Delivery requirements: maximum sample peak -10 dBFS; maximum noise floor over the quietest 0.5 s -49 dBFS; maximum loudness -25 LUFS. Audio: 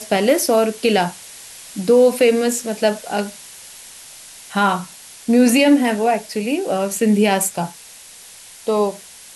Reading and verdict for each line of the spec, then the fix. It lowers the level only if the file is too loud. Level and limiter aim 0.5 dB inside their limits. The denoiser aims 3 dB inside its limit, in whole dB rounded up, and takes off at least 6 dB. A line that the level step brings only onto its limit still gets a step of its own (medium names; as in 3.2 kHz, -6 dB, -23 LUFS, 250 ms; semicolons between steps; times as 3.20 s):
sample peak -4.5 dBFS: fail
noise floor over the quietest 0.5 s -41 dBFS: fail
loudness -17.5 LUFS: fail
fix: noise reduction 6 dB, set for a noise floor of -41 dBFS; trim -8 dB